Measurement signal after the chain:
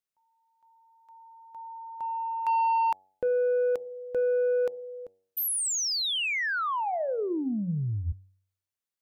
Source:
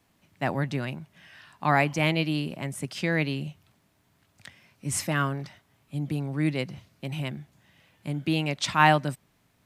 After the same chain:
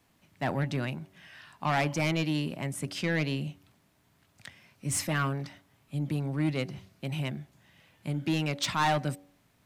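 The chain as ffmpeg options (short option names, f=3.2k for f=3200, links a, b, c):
-af "asoftclip=type=tanh:threshold=-20.5dB,bandreject=f=94.88:t=h:w=4,bandreject=f=189.76:t=h:w=4,bandreject=f=284.64:t=h:w=4,bandreject=f=379.52:t=h:w=4,bandreject=f=474.4:t=h:w=4,bandreject=f=569.28:t=h:w=4,bandreject=f=664.16:t=h:w=4,bandreject=f=759.04:t=h:w=4,bandreject=f=853.92:t=h:w=4"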